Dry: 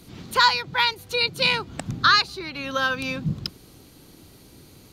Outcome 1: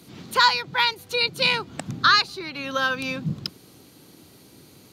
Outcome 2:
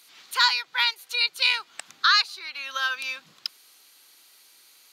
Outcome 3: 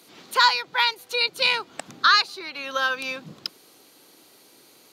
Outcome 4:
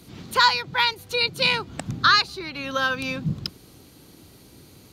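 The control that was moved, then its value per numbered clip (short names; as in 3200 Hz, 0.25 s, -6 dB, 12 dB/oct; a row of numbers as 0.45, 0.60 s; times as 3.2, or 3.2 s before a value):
HPF, cutoff: 120, 1400, 450, 45 Hz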